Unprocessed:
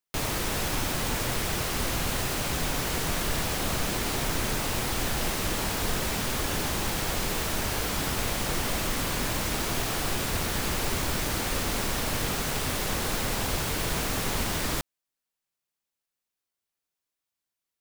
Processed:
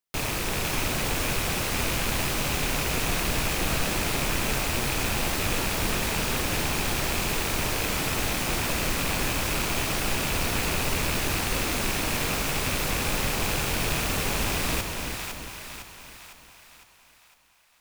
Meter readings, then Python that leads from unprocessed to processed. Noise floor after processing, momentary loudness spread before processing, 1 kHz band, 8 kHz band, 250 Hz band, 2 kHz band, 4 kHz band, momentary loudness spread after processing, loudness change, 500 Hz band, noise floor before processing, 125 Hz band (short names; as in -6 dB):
-57 dBFS, 0 LU, +1.5 dB, +1.5 dB, +1.5 dB, +4.0 dB, +2.0 dB, 2 LU, +2.0 dB, +1.5 dB, under -85 dBFS, +1.5 dB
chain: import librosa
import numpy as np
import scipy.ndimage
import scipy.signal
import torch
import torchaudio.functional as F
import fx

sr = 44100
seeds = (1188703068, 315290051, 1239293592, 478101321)

y = fx.rattle_buzz(x, sr, strikes_db=-34.0, level_db=-21.0)
y = fx.echo_split(y, sr, split_hz=700.0, low_ms=339, high_ms=506, feedback_pct=52, wet_db=-5)